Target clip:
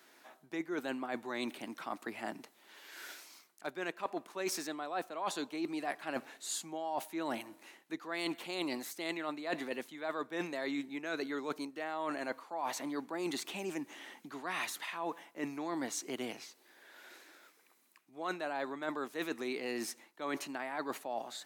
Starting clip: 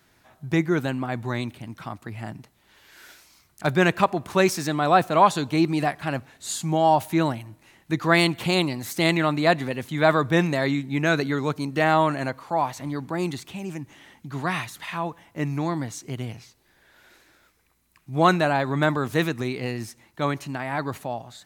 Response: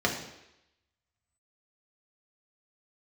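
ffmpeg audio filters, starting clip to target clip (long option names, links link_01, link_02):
-af "highpass=frequency=270:width=0.5412,highpass=frequency=270:width=1.3066,areverse,acompressor=threshold=-34dB:ratio=16,areverse"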